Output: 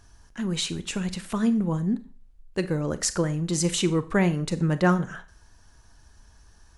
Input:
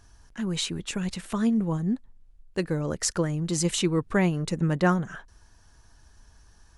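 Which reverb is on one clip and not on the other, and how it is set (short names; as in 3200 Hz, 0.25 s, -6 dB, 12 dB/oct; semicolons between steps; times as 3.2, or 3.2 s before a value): Schroeder reverb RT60 0.38 s, combs from 30 ms, DRR 13 dB; gain +1 dB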